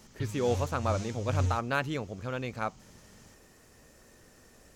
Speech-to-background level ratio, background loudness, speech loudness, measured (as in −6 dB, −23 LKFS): 2.0 dB, −35.0 LKFS, −33.0 LKFS